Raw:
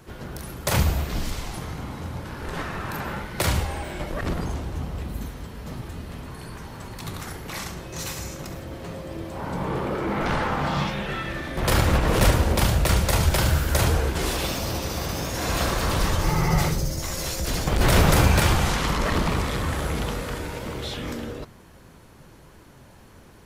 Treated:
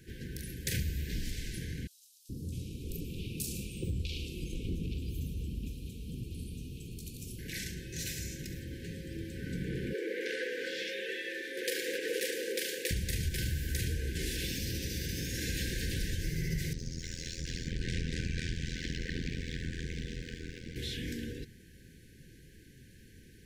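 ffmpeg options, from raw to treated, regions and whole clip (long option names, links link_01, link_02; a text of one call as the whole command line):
ffmpeg -i in.wav -filter_complex "[0:a]asettb=1/sr,asplit=3[link_01][link_02][link_03];[link_01]atrim=end=1.874[link_04];[link_02]atrim=start=1.87:end=7.39,asetpts=PTS-STARTPTS,afade=type=in:duration=0.004:curve=qsin,afade=type=out:start_time=5.516:duration=0.004:curve=qsin,asuperstop=centerf=1300:order=20:qfactor=0.76,acrossover=split=660|4900[link_05][link_06][link_07];[link_05]adelay=420[link_08];[link_06]adelay=650[link_09];[link_08][link_09][link_07]amix=inputs=3:normalize=0,atrim=end_sample=243432[link_10];[link_03]atrim=start=7.386[link_11];[link_04][link_10]acrossfade=duration=0.004:curve1=hsin:curve2=qsin[link_12];[link_12][link_11]acrossfade=duration=0.004:curve1=qsin:curve2=hsin,asettb=1/sr,asplit=3[link_13][link_14][link_15];[link_13]atrim=end=9.934[link_16];[link_14]atrim=start=9.93:end=12.91,asetpts=PTS-STARTPTS,afade=type=in:duration=0.004:curve=qsin,afade=type=out:start_time=2.976:duration=0.004:curve=qsin,highpass=frequency=390:width=0.5412,highpass=frequency=390:width=1.3066,equalizer=frequency=540:width_type=o:width=0.97:gain=11.5[link_17];[link_15]atrim=start=12.906[link_18];[link_16][link_17]acrossfade=duration=0.004:curve1=hsin:curve2=qsin[link_19];[link_19][link_18]acrossfade=duration=0.004:curve1=qsin:curve2=hsin,asettb=1/sr,asplit=3[link_20][link_21][link_22];[link_20]atrim=end=16.734[link_23];[link_21]atrim=start=16.73:end=20.76,asetpts=PTS-STARTPTS,afade=type=in:duration=0.004:curve=qsin,afade=type=out:start_time=4.026:duration=0.004:curve=qsin,lowpass=frequency=7000:width=0.5412,lowpass=frequency=7000:width=1.3066,aeval=exprs='sgn(val(0))*max(abs(val(0))-0.00376,0)':channel_layout=same,tremolo=f=83:d=0.974[link_24];[link_22]atrim=start=20.756[link_25];[link_23][link_24]acrossfade=duration=0.004:curve1=hsin:curve2=qsin[link_26];[link_26][link_25]acrossfade=duration=0.004:curve1=qsin:curve2=hsin,afftfilt=real='re*(1-between(b*sr/4096,540,1500))':imag='im*(1-between(b*sr/4096,540,1500))':win_size=4096:overlap=0.75,equalizer=frequency=590:width_type=o:width=0.6:gain=-12.5,acompressor=threshold=-27dB:ratio=3,volume=-5dB" out.wav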